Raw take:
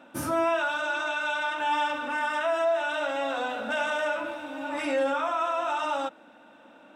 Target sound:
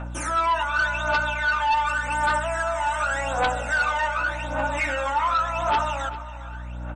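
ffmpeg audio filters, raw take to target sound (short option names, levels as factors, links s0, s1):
-filter_complex "[0:a]highpass=890,aemphasis=mode=reproduction:type=75fm,acrossover=split=3200[s0][s1];[s1]acompressor=threshold=0.00251:ratio=4:attack=1:release=60[s2];[s0][s2]amix=inputs=2:normalize=0,asetnsamples=n=441:p=0,asendcmd='1.87 highshelf g 12.5;3.84 highshelf g 6',highshelf=f=5500:t=q:w=3:g=6,alimiter=level_in=1.41:limit=0.0631:level=0:latency=1:release=212,volume=0.708,aeval=exprs='val(0)+0.00224*(sin(2*PI*60*n/s)+sin(2*PI*2*60*n/s)/2+sin(2*PI*3*60*n/s)/3+sin(2*PI*4*60*n/s)/4+sin(2*PI*5*60*n/s)/5)':c=same,aphaser=in_gain=1:out_gain=1:delay=1.1:decay=0.73:speed=0.87:type=triangular,aeval=exprs='0.15*sin(PI/2*2.24*val(0)/0.15)':c=same,asplit=2[s3][s4];[s4]adelay=397,lowpass=f=3900:p=1,volume=0.2,asplit=2[s5][s6];[s6]adelay=397,lowpass=f=3900:p=1,volume=0.33,asplit=2[s7][s8];[s8]adelay=397,lowpass=f=3900:p=1,volume=0.33[s9];[s3][s5][s7][s9]amix=inputs=4:normalize=0" -ar 48000 -c:a libmp3lame -b:a 40k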